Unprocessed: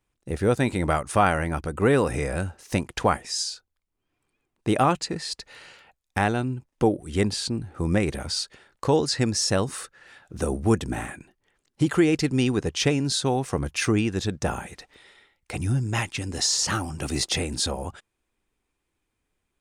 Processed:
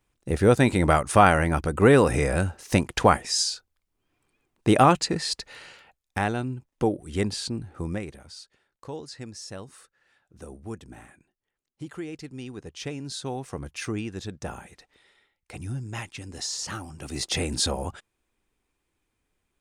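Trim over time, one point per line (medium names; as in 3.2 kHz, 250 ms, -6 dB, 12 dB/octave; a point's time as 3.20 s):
5.31 s +3.5 dB
6.20 s -3 dB
7.76 s -3 dB
8.20 s -16 dB
12.42 s -16 dB
13.31 s -8.5 dB
17.04 s -8.5 dB
17.46 s +1 dB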